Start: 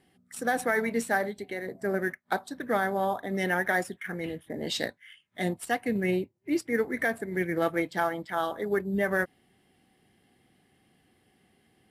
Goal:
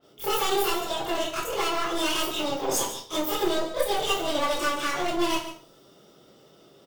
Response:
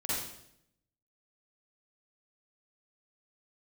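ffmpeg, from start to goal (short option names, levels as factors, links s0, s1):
-filter_complex "[0:a]asplit=2[s0][s1];[s1]acompressor=threshold=0.0158:ratio=6,volume=1.26[s2];[s0][s2]amix=inputs=2:normalize=0,aeval=exprs='(tanh(25.1*val(0)+0.6)-tanh(0.6))/25.1':c=same,aecho=1:1:247:0.237[s3];[1:a]atrim=start_sample=2205,asetrate=48510,aresample=44100[s4];[s3][s4]afir=irnorm=-1:irlink=0,asetrate=76440,aresample=44100,adynamicequalizer=threshold=0.00708:dfrequency=4700:dqfactor=0.7:tfrequency=4700:tqfactor=0.7:attack=5:release=100:ratio=0.375:range=3:mode=boostabove:tftype=highshelf"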